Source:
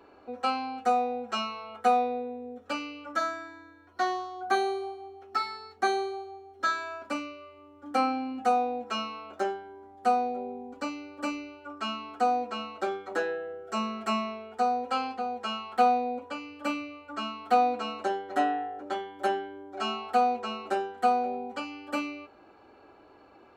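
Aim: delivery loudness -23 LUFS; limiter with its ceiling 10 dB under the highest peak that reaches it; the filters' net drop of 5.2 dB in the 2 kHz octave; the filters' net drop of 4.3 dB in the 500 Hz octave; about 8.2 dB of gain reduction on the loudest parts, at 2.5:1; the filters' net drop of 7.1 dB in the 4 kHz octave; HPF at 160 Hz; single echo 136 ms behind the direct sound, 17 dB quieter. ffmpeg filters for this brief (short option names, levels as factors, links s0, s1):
-af "highpass=160,equalizer=f=500:t=o:g=-5,equalizer=f=2000:t=o:g=-5,equalizer=f=4000:t=o:g=-8,acompressor=threshold=0.02:ratio=2.5,alimiter=level_in=2.51:limit=0.0631:level=0:latency=1,volume=0.398,aecho=1:1:136:0.141,volume=8.41"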